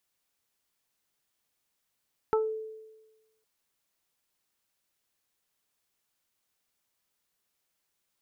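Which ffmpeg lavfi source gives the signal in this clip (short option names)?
-f lavfi -i "aevalsrc='0.0841*pow(10,-3*t/1.19)*sin(2*PI*438*t)+0.0596*pow(10,-3*t/0.2)*sin(2*PI*876*t)+0.0422*pow(10,-3*t/0.21)*sin(2*PI*1314*t)':d=1.11:s=44100"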